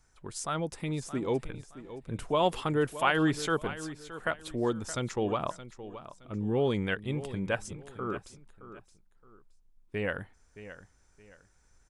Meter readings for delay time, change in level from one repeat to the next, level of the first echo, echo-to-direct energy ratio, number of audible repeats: 620 ms, −10.5 dB, −14.0 dB, −13.5 dB, 2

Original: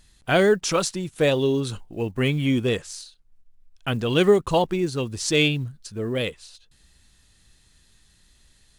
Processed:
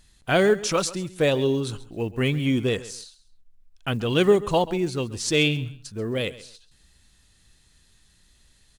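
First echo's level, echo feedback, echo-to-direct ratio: −17.5 dB, 23%, −17.5 dB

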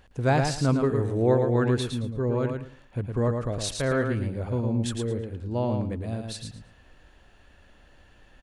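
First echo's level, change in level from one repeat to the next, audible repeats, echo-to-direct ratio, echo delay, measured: −5.0 dB, −13.5 dB, 3, −5.0 dB, 111 ms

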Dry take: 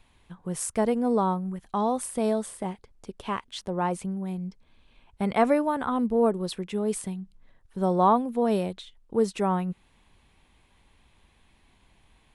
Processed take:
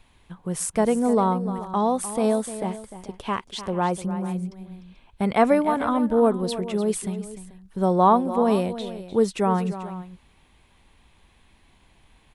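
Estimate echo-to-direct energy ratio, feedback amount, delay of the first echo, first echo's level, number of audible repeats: −11.5 dB, repeats not evenly spaced, 300 ms, −13.0 dB, 2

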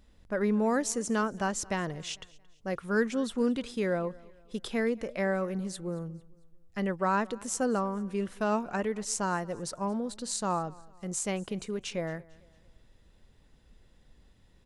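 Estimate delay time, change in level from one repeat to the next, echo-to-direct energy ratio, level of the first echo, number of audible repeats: 225 ms, −7.5 dB, −22.5 dB, −23.5 dB, 2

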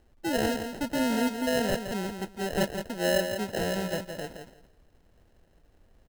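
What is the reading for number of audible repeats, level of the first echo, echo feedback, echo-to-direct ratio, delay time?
2, −7.5 dB, 18%, −7.5 dB, 169 ms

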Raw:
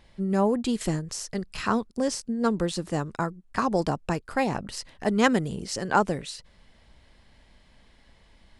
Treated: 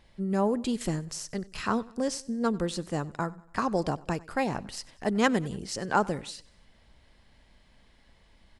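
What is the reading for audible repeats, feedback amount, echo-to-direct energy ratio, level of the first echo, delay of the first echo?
3, 48%, −21.0 dB, −22.0 dB, 95 ms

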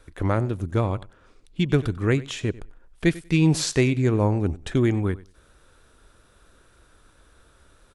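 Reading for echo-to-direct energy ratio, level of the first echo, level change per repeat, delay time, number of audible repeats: −19.5 dB, −19.5 dB, −15.5 dB, 95 ms, 2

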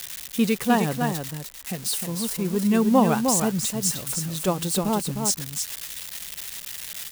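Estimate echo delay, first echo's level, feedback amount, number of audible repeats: 307 ms, −5.5 dB, repeats not evenly spaced, 1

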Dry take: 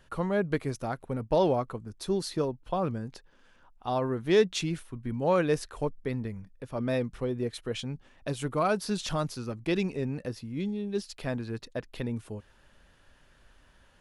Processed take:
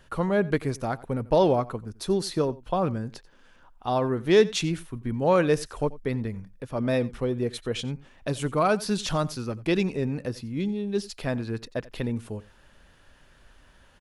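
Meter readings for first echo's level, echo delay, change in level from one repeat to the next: −20.0 dB, 89 ms, repeats not evenly spaced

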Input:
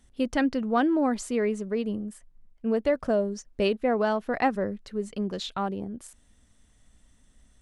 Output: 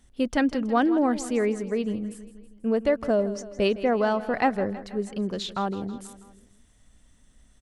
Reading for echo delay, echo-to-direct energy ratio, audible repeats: 162 ms, −14.0 dB, 4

